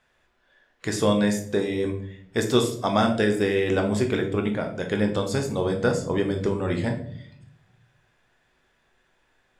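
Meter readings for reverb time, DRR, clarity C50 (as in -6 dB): 0.65 s, 3.0 dB, 9.5 dB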